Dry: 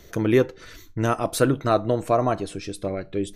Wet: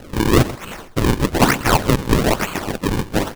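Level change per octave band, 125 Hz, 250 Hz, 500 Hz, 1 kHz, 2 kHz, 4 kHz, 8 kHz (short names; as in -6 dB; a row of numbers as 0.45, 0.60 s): +8.0, +6.0, +1.0, +5.5, +10.5, +12.0, +9.5 dB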